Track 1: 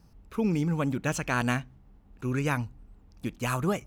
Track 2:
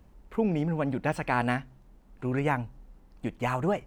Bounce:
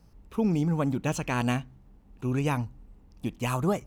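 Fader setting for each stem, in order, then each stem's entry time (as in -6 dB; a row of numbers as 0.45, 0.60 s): -1.5, -7.0 dB; 0.00, 0.00 s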